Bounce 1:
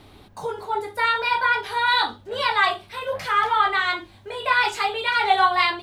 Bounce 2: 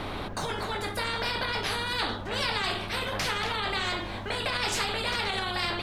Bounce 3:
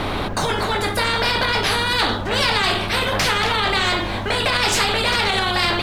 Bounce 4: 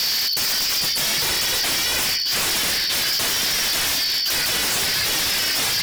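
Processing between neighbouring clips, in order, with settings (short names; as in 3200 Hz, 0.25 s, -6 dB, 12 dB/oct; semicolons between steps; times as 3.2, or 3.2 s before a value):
tilt -4.5 dB/oct; limiter -16 dBFS, peak gain reduction 10.5 dB; spectral compressor 4:1
sample leveller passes 1; gain +7.5 dB
four-band scrambler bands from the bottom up 4321; vocal rider 0.5 s; wavefolder -19.5 dBFS; gain +3 dB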